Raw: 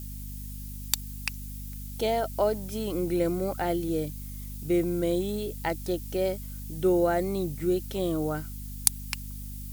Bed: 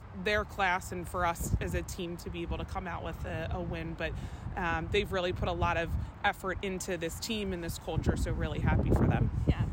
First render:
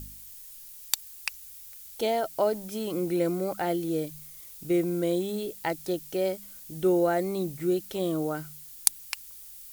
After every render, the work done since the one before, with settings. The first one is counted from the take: de-hum 50 Hz, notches 5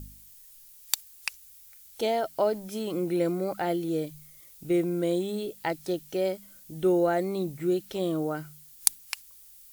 noise print and reduce 6 dB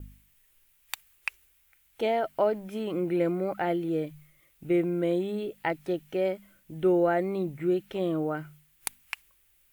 expander -48 dBFS; resonant high shelf 3.5 kHz -11 dB, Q 1.5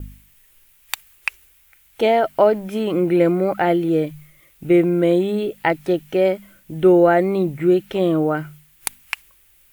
trim +10.5 dB; peak limiter -3 dBFS, peak gain reduction 2.5 dB

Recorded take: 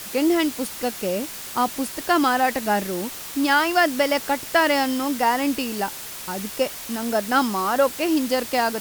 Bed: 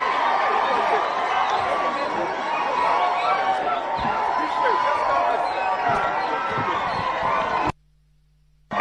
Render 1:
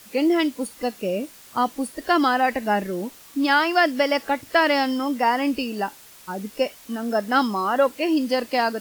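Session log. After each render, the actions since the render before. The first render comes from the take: noise print and reduce 12 dB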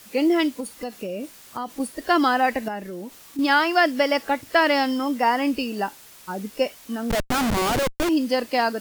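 0.60–1.80 s: compression, threshold -26 dBFS; 2.68–3.39 s: compression 2:1, threshold -35 dBFS; 7.10–8.09 s: Schmitt trigger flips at -24.5 dBFS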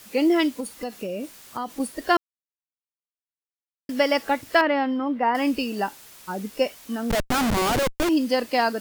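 2.17–3.89 s: mute; 4.61–5.35 s: distance through air 470 m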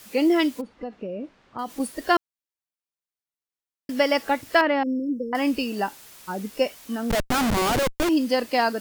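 0.61–1.59 s: tape spacing loss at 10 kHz 39 dB; 4.83–5.33 s: brick-wall FIR band-stop 540–5300 Hz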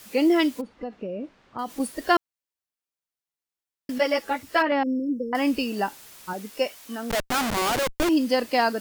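3.98–4.72 s: three-phase chorus; 6.33–7.89 s: bass shelf 320 Hz -9 dB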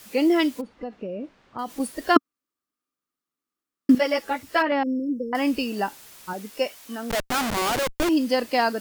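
2.16–3.95 s: small resonant body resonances 270/1200 Hz, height 17 dB, ringing for 25 ms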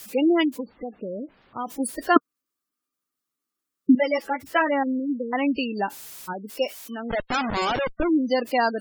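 spectral gate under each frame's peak -20 dB strong; treble shelf 4 kHz +7 dB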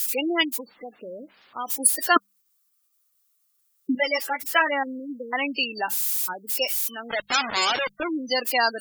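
tilt EQ +4.5 dB/octave; hum notches 50/100/150/200 Hz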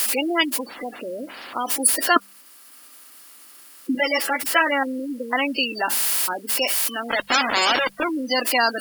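spectral levelling over time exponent 0.6; upward compressor, threshold -41 dBFS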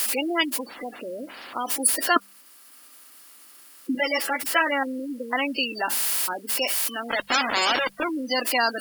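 trim -3 dB

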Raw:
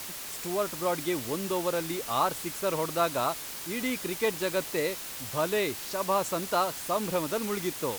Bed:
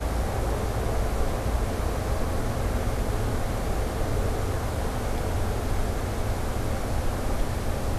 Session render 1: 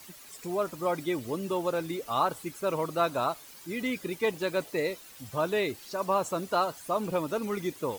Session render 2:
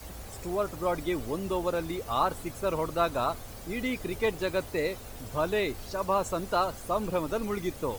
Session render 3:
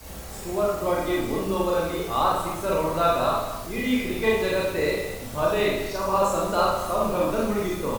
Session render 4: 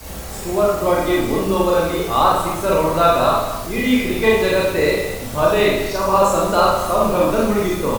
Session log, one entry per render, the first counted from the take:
noise reduction 13 dB, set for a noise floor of -39 dBFS
add bed -17 dB
delay 223 ms -12.5 dB; Schroeder reverb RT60 0.71 s, combs from 28 ms, DRR -4.5 dB
trim +7.5 dB; peak limiter -3 dBFS, peak gain reduction 1 dB

